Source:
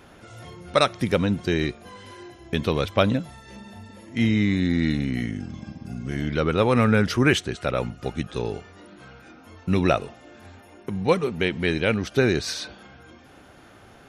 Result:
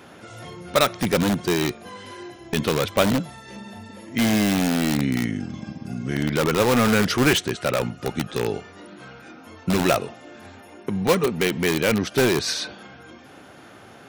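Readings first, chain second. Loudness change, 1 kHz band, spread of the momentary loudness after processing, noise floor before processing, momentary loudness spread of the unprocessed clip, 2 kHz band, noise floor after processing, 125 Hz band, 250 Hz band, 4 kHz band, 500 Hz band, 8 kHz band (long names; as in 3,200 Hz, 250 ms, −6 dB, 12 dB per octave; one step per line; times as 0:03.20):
+1.5 dB, +2.0 dB, 20 LU, −50 dBFS, 21 LU, +2.0 dB, −46 dBFS, −1.0 dB, +1.5 dB, +4.0 dB, +1.5 dB, +9.0 dB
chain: high-pass filter 120 Hz 12 dB per octave
in parallel at −3.5 dB: wrap-around overflow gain 17.5 dB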